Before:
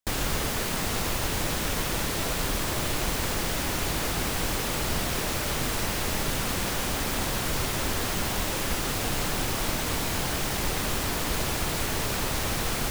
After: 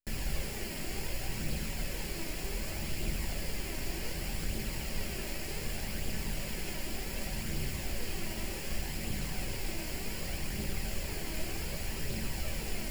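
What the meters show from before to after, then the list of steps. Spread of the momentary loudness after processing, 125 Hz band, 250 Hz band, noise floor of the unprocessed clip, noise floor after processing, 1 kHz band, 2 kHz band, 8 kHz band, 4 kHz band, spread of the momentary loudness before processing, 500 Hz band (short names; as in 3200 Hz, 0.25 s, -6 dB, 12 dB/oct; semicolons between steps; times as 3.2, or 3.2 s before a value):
1 LU, -7.0 dB, -8.5 dB, -29 dBFS, -39 dBFS, -15.5 dB, -10.5 dB, -11.5 dB, -11.0 dB, 0 LU, -10.5 dB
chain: minimum comb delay 0.4 ms; flange 0.66 Hz, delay 0.2 ms, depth 3.1 ms, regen +51%; shoebox room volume 250 m³, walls furnished, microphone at 1.1 m; gain -6.5 dB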